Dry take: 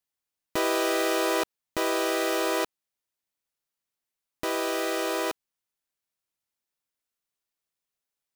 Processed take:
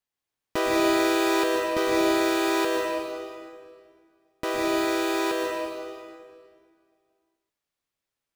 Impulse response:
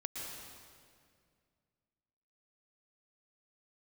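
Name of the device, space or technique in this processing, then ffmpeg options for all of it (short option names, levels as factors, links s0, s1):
swimming-pool hall: -filter_complex "[1:a]atrim=start_sample=2205[s0];[0:a][s0]afir=irnorm=-1:irlink=0,highshelf=f=5700:g=-8,volume=1.68"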